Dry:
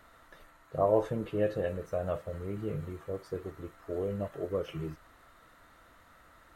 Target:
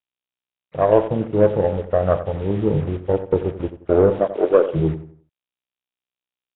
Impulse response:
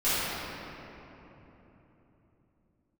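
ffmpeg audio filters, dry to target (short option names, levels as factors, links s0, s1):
-filter_complex "[0:a]agate=range=0.282:threshold=0.00562:ratio=16:detection=peak,asplit=3[s0][s1][s2];[s0]afade=t=out:st=4.09:d=0.02[s3];[s1]highpass=f=290:w=0.5412,highpass=f=290:w=1.3066,afade=t=in:st=4.09:d=0.02,afade=t=out:st=4.64:d=0.02[s4];[s2]afade=t=in:st=4.64:d=0.02[s5];[s3][s4][s5]amix=inputs=3:normalize=0,asplit=2[s6][s7];[s7]aeval=exprs='sgn(val(0))*max(abs(val(0))-0.00335,0)':c=same,volume=0.501[s8];[s6][s8]amix=inputs=2:normalize=0,dynaudnorm=f=620:g=3:m=6.31,afwtdn=0.0891,aeval=exprs='0.75*(cos(1*acos(clip(val(0)/0.75,-1,1)))-cos(1*PI/2))+0.0211*(cos(2*acos(clip(val(0)/0.75,-1,1)))-cos(2*PI/2))+0.0266*(cos(7*acos(clip(val(0)/0.75,-1,1)))-cos(7*PI/2))':c=same,acrusher=bits=5:mix=0:aa=0.5,asplit=2[s9][s10];[s10]adelay=88,lowpass=f=2300:p=1,volume=0.251,asplit=2[s11][s12];[s12]adelay=88,lowpass=f=2300:p=1,volume=0.35,asplit=2[s13][s14];[s14]adelay=88,lowpass=f=2300:p=1,volume=0.35,asplit=2[s15][s16];[s16]adelay=88,lowpass=f=2300:p=1,volume=0.35[s17];[s9][s11][s13][s15][s17]amix=inputs=5:normalize=0,volume=1.19" -ar 8000 -c:a nellymoser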